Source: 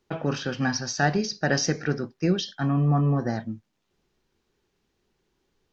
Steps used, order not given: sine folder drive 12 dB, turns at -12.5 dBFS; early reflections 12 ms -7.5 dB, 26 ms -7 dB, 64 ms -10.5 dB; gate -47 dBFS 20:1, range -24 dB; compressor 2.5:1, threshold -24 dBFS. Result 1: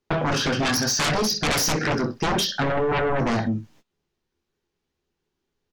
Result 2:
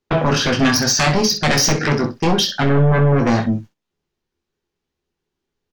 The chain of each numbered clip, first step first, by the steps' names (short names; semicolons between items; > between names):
early reflections > sine folder > gate > compressor; gate > compressor > sine folder > early reflections